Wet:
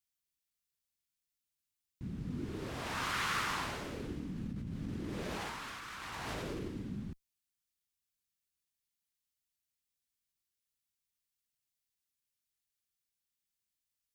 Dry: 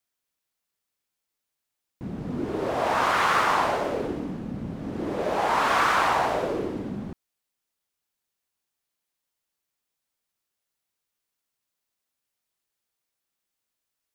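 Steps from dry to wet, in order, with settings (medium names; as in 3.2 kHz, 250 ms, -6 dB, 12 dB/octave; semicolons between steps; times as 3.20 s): amplifier tone stack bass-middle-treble 6-0-2; 4.36–6.68 s: compressor with a negative ratio -51 dBFS, ratio -1; trim +9.5 dB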